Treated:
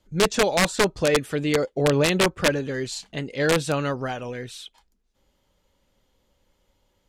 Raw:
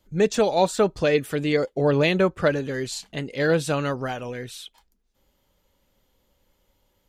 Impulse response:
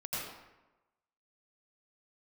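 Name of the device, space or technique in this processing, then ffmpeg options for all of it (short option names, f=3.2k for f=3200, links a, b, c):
overflowing digital effects unit: -af "aeval=exprs='(mod(3.76*val(0)+1,2)-1)/3.76':c=same,lowpass=9.9k"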